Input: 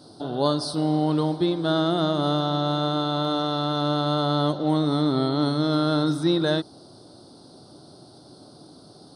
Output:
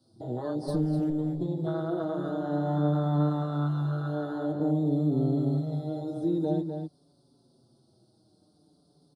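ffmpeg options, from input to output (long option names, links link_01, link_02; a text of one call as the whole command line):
ffmpeg -i in.wav -filter_complex "[0:a]acrossover=split=270|970[link_01][link_02][link_03];[link_01]acrusher=samples=12:mix=1:aa=0.000001[link_04];[link_04][link_02][link_03]amix=inputs=3:normalize=0,aresample=32000,aresample=44100,asplit=3[link_05][link_06][link_07];[link_05]afade=type=out:start_time=0.67:duration=0.02[link_08];[link_06]aeval=exprs='0.251*(cos(1*acos(clip(val(0)/0.251,-1,1)))-cos(1*PI/2))+0.0891*(cos(5*acos(clip(val(0)/0.251,-1,1)))-cos(5*PI/2))+0.0708*(cos(6*acos(clip(val(0)/0.251,-1,1)))-cos(6*PI/2))':channel_layout=same,afade=type=in:start_time=0.67:duration=0.02,afade=type=out:start_time=1.09:duration=0.02[link_09];[link_07]afade=type=in:start_time=1.09:duration=0.02[link_10];[link_08][link_09][link_10]amix=inputs=3:normalize=0,equalizer=frequency=1700:width=0.48:gain=-8,acompressor=threshold=-26dB:ratio=20,afwtdn=0.0251,equalizer=frequency=140:width=1.8:gain=4,asplit=2[link_11][link_12];[link_12]adelay=250.7,volume=-6dB,highshelf=frequency=4000:gain=-5.64[link_13];[link_11][link_13]amix=inputs=2:normalize=0,asplit=2[link_14][link_15];[link_15]adelay=5.7,afreqshift=-0.51[link_16];[link_14][link_16]amix=inputs=2:normalize=1,volume=3dB" out.wav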